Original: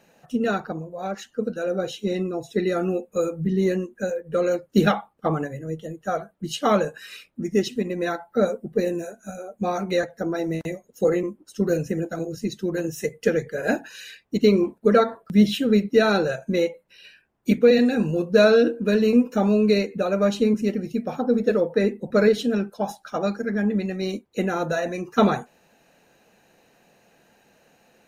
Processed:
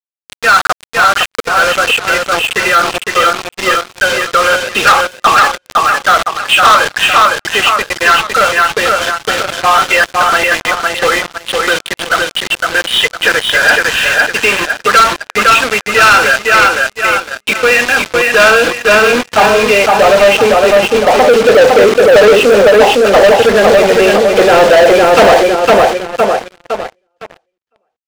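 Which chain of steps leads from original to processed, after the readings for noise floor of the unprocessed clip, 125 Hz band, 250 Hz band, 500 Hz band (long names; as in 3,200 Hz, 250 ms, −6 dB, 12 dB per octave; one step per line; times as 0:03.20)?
−63 dBFS, +1.0 dB, +1.5 dB, +13.0 dB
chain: hearing-aid frequency compression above 2,400 Hz 4 to 1
high-pass filter 120 Hz 24 dB per octave
low-shelf EQ 170 Hz +5.5 dB
in parallel at +2 dB: downward compressor 6 to 1, threshold −26 dBFS, peak gain reduction 16 dB
on the sum: high-pass filter sweep 1,200 Hz → 550 Hz, 0:17.89–0:21.69
bit reduction 5 bits
high-frequency loss of the air 80 metres
on a send: repeating echo 508 ms, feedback 38%, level −4 dB
on the sum: leveller curve on the samples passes 5
level −1 dB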